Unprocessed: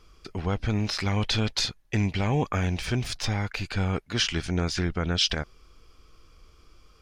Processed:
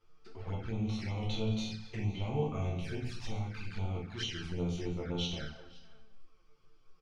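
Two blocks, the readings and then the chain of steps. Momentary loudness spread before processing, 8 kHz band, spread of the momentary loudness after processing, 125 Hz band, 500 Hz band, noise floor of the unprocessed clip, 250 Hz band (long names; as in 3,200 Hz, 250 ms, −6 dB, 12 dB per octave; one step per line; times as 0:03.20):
5 LU, −16.5 dB, 8 LU, −8.0 dB, −7.0 dB, −58 dBFS, −8.0 dB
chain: feedback delay that plays each chunk backwards 110 ms, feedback 44%, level −12 dB
low-pass filter 3,500 Hz 6 dB per octave
low-shelf EQ 75 Hz −7.5 dB
resonators tuned to a chord D2 minor, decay 0.35 s
on a send: single-tap delay 514 ms −22 dB
on the sum: rectangular room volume 70 cubic metres, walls mixed, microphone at 0.82 metres
flanger swept by the level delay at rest 9.2 ms, full sweep at −31.5 dBFS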